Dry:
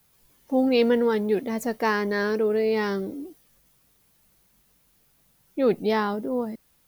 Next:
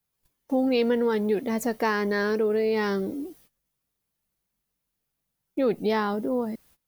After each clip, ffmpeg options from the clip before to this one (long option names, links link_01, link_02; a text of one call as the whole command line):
ffmpeg -i in.wav -af "agate=range=-20dB:threshold=-57dB:ratio=16:detection=peak,acompressor=threshold=-26dB:ratio=2,volume=2.5dB" out.wav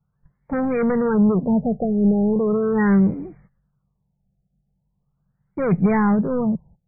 ffmpeg -i in.wav -af "aeval=exprs='0.211*sin(PI/2*1.78*val(0)/0.211)':channel_layout=same,lowshelf=frequency=220:width_type=q:width=3:gain=9,afftfilt=real='re*lt(b*sr/1024,790*pow(2500/790,0.5+0.5*sin(2*PI*0.39*pts/sr)))':imag='im*lt(b*sr/1024,790*pow(2500/790,0.5+0.5*sin(2*PI*0.39*pts/sr)))':win_size=1024:overlap=0.75,volume=-1.5dB" out.wav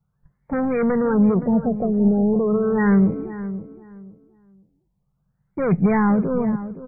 ffmpeg -i in.wav -filter_complex "[0:a]asplit=2[link_01][link_02];[link_02]adelay=519,lowpass=frequency=1500:poles=1,volume=-13dB,asplit=2[link_03][link_04];[link_04]adelay=519,lowpass=frequency=1500:poles=1,volume=0.24,asplit=2[link_05][link_06];[link_06]adelay=519,lowpass=frequency=1500:poles=1,volume=0.24[link_07];[link_01][link_03][link_05][link_07]amix=inputs=4:normalize=0" out.wav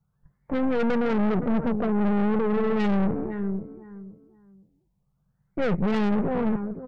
ffmpeg -i in.wav -af "aeval=exprs='(tanh(17.8*val(0)+0.75)-tanh(0.75))/17.8':channel_layout=same,volume=3.5dB" out.wav